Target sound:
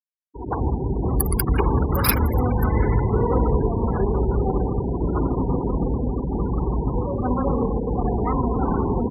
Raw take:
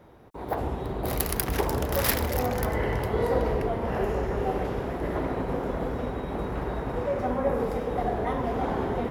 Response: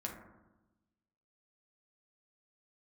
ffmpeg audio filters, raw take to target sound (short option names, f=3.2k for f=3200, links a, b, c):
-filter_complex "[0:a]acontrast=54,asplit=2[a][b];[b]aecho=0:1:170:0.251[c];[a][c]amix=inputs=2:normalize=0,afftfilt=real='re*gte(hypot(re,im),0.1)':imag='im*gte(hypot(re,im),0.1)':win_size=1024:overlap=0.75,aecho=1:1:0.8:0.73,volume=-1dB"